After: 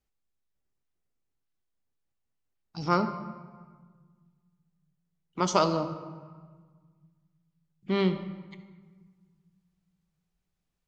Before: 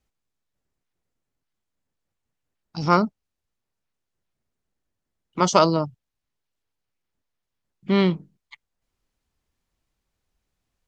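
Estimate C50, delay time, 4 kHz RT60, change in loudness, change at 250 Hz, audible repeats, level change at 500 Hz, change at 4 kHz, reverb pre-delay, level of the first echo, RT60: 10.0 dB, no echo, 0.95 s, -7.5 dB, -6.5 dB, no echo, -6.5 dB, -6.5 dB, 3 ms, no echo, 1.5 s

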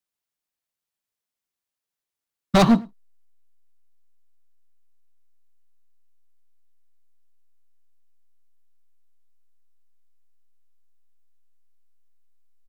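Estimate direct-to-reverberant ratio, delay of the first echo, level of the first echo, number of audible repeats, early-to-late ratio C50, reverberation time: no reverb, 104 ms, -23.5 dB, 1, no reverb, no reverb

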